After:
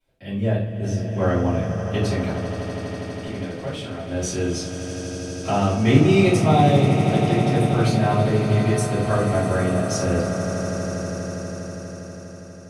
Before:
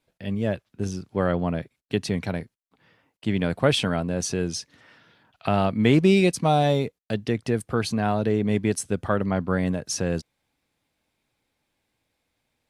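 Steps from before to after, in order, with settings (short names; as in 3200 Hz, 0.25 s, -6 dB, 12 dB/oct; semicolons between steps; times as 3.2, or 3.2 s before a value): 2.29–4.1 compressor 2.5:1, threshold -35 dBFS, peak gain reduction 14 dB; swelling echo 81 ms, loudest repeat 8, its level -14 dB; shoebox room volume 45 m³, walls mixed, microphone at 2.8 m; gain -12 dB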